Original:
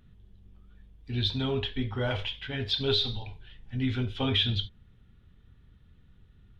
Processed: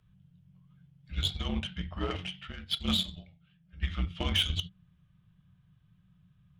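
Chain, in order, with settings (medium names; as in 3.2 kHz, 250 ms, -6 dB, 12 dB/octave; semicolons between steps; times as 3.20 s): frequency shift -190 Hz; Chebyshev shaper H 7 -23 dB, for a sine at -13.5 dBFS; 2.52–3.83 s: upward expansion 1.5:1, over -45 dBFS; trim -1 dB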